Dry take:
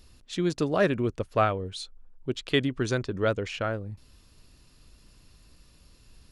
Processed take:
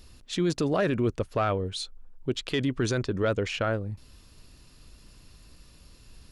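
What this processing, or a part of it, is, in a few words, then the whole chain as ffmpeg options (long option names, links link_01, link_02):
soft clipper into limiter: -af "asoftclip=type=tanh:threshold=-11.5dB,alimiter=limit=-21dB:level=0:latency=1:release=17,volume=3.5dB"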